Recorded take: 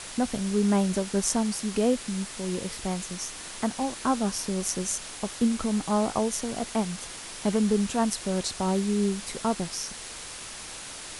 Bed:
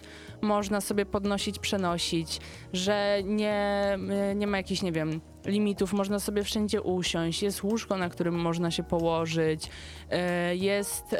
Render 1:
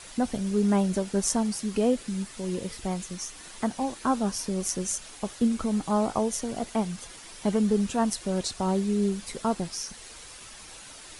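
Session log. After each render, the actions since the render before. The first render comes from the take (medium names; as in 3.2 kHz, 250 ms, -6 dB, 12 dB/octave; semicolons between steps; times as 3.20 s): noise reduction 8 dB, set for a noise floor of -40 dBFS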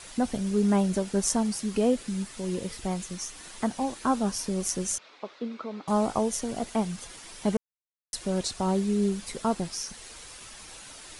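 4.98–5.88 s: cabinet simulation 440–3700 Hz, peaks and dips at 780 Hz -6 dB, 1.7 kHz -6 dB, 3 kHz -8 dB; 7.57–8.13 s: mute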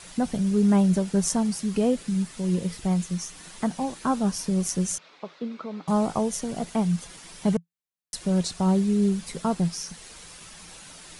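peaking EQ 170 Hz +12.5 dB 0.34 oct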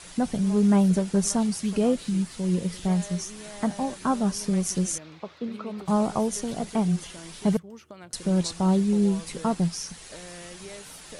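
add bed -16 dB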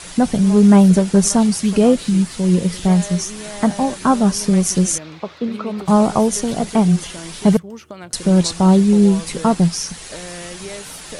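trim +10 dB; peak limiter -2 dBFS, peak gain reduction 2.5 dB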